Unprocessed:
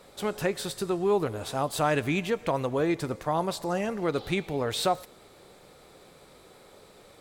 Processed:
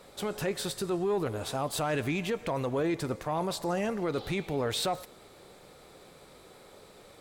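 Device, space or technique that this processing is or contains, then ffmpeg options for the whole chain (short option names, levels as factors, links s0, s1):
soft clipper into limiter: -af "asoftclip=type=tanh:threshold=0.158,alimiter=limit=0.075:level=0:latency=1:release=10"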